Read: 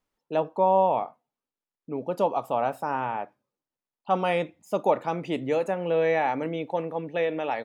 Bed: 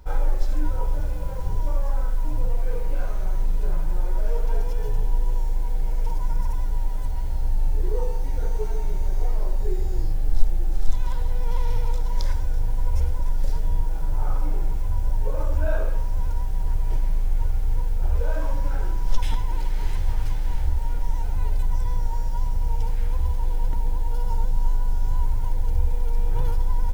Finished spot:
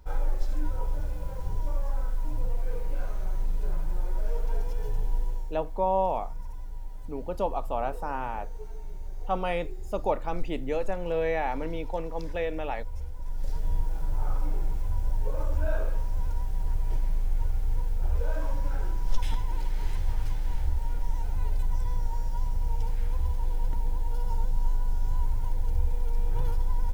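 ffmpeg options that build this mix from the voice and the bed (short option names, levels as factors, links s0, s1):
-filter_complex "[0:a]adelay=5200,volume=0.596[s0];[1:a]volume=1.58,afade=t=out:st=5.19:d=0.35:silence=0.375837,afade=t=in:st=13.16:d=0.55:silence=0.334965[s1];[s0][s1]amix=inputs=2:normalize=0"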